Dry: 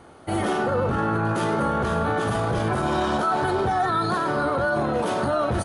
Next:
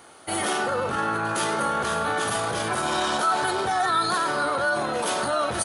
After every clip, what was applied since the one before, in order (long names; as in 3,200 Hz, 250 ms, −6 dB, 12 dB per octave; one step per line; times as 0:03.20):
spectral tilt +3.5 dB per octave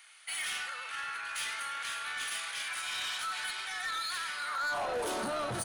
high-pass filter sweep 2,200 Hz → 120 Hz, 0:04.43–0:05.45
soft clipping −24.5 dBFS, distortion −10 dB
level −6 dB